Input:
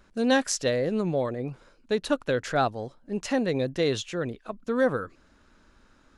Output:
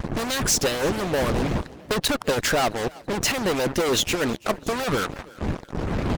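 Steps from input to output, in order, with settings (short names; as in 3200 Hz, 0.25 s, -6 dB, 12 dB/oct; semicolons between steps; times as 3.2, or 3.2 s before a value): wind noise 240 Hz -40 dBFS; in parallel at -3 dB: compressor, threshold -36 dBFS, peak gain reduction 17.5 dB; on the sum: speakerphone echo 0.37 s, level -26 dB; fuzz box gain 39 dB, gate -39 dBFS; on a send: frequency-shifting echo 0.332 s, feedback 46%, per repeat +34 Hz, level -20.5 dB; on the sum: harmonic-percussive split harmonic -13 dB; gain -3 dB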